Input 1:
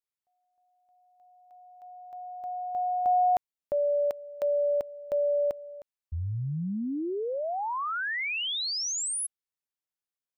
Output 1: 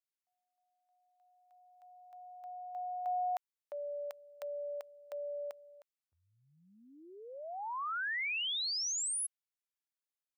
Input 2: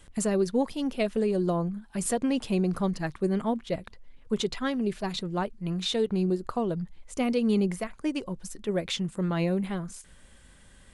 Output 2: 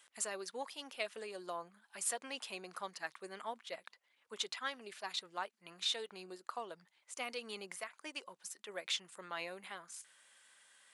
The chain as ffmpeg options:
-af "highpass=1k,volume=-4.5dB"

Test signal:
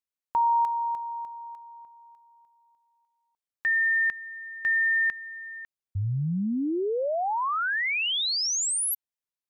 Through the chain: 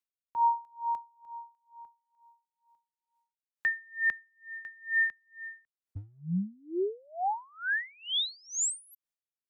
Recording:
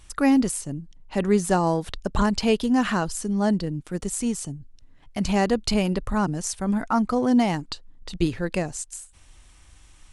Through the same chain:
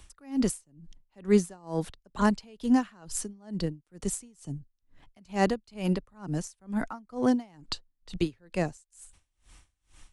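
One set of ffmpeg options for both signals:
-filter_complex "[0:a]acrossover=split=130|400|4800[a][b][c][d];[a]asoftclip=type=hard:threshold=-32dB[e];[e][b][c][d]amix=inputs=4:normalize=0,aeval=exprs='val(0)*pow(10,-32*(0.5-0.5*cos(2*PI*2.2*n/s))/20)':c=same"

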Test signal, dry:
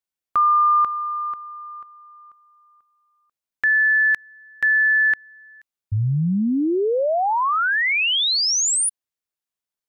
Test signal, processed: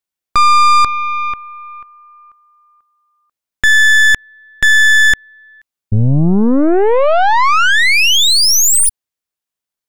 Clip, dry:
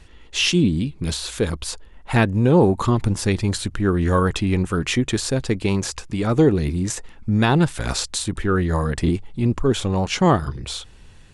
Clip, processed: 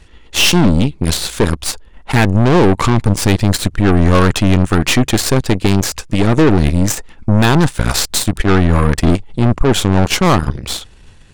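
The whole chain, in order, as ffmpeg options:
-af "asoftclip=type=tanh:threshold=-14dB,aeval=exprs='0.2*(cos(1*acos(clip(val(0)/0.2,-1,1)))-cos(1*PI/2))+0.0501*(cos(4*acos(clip(val(0)/0.2,-1,1)))-cos(4*PI/2))+0.0126*(cos(7*acos(clip(val(0)/0.2,-1,1)))-cos(7*PI/2))':c=same,volume=9dB"

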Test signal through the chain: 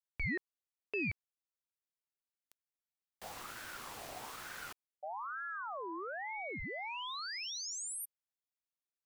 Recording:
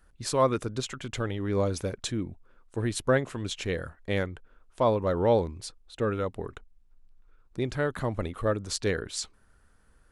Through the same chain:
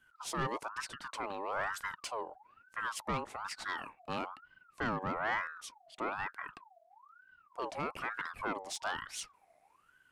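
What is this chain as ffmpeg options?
-af "asoftclip=type=tanh:threshold=-22dB,aeval=exprs='val(0)*sin(2*PI*1100*n/s+1100*0.4/1.1*sin(2*PI*1.1*n/s))':c=same,volume=-4.5dB"

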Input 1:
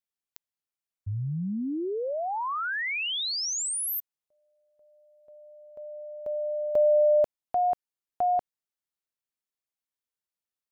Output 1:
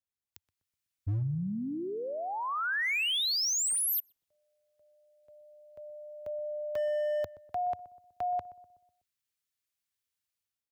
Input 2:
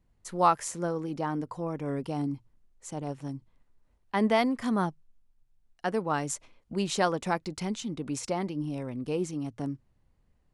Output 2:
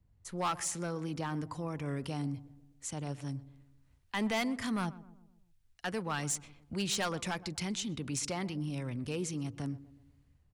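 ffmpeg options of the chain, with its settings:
-filter_complex "[0:a]equalizer=f=89:t=o:w=1.4:g=14.5,acrossover=split=230|1400[a][b][c];[c]dynaudnorm=f=190:g=5:m=11dB[d];[a][b][d]amix=inputs=3:normalize=0,asoftclip=type=hard:threshold=-18dB,acompressor=threshold=-25dB:ratio=2:attack=0.71:release=65:knee=6,asplit=2[e][f];[f]adelay=124,lowpass=f=1k:p=1,volume=-16dB,asplit=2[g][h];[h]adelay=124,lowpass=f=1k:p=1,volume=0.53,asplit=2[i][j];[j]adelay=124,lowpass=f=1k:p=1,volume=0.53,asplit=2[k][l];[l]adelay=124,lowpass=f=1k:p=1,volume=0.53,asplit=2[m][n];[n]adelay=124,lowpass=f=1k:p=1,volume=0.53[o];[e][g][i][k][m][o]amix=inputs=6:normalize=0,volume=-6dB"

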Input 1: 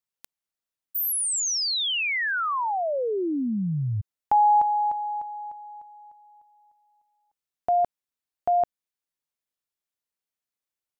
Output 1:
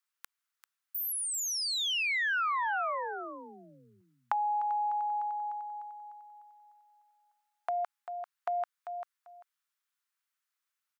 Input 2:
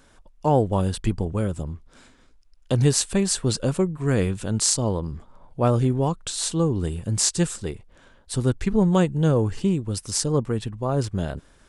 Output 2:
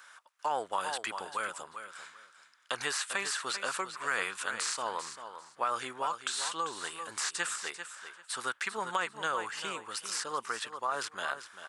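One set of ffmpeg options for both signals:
-filter_complex "[0:a]highpass=f=1.3k:t=q:w=2.2,acrossover=split=2800[a][b];[b]acompressor=threshold=-35dB:ratio=4:attack=1:release=60[c];[a][c]amix=inputs=2:normalize=0,aecho=1:1:393|786:0.266|0.0506,acompressor=threshold=-34dB:ratio=6:attack=20:release=36:knee=6:detection=peak,volume=2dB"

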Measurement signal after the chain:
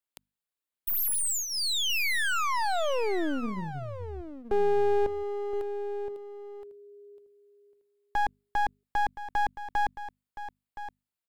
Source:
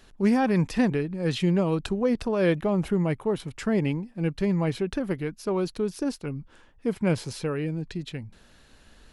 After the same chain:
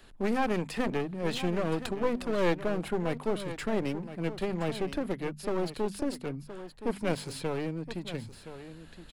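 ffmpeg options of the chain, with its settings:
-filter_complex "[0:a]equalizer=f=5.9k:t=o:w=0.25:g=-10.5,bandreject=f=50:t=h:w=6,bandreject=f=100:t=h:w=6,bandreject=f=150:t=h:w=6,bandreject=f=200:t=h:w=6,bandreject=f=250:t=h:w=6,acrossover=split=240|490|3000[a][b][c][d];[a]acompressor=threshold=-39dB:ratio=20[e];[e][b][c][d]amix=inputs=4:normalize=0,aeval=exprs='clip(val(0),-1,0.0141)':c=same,aecho=1:1:1020:0.237"

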